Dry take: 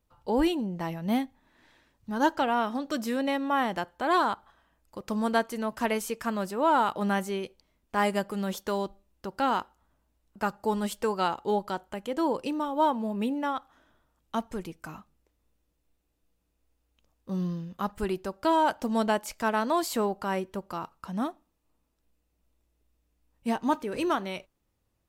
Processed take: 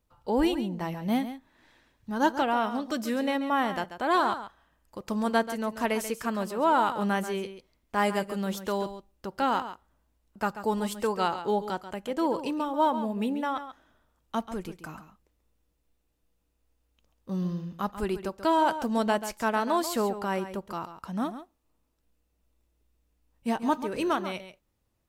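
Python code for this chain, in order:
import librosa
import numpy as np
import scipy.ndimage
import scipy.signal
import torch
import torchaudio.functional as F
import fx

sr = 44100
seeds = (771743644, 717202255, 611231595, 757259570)

y = x + 10.0 ** (-11.5 / 20.0) * np.pad(x, (int(137 * sr / 1000.0), 0))[:len(x)]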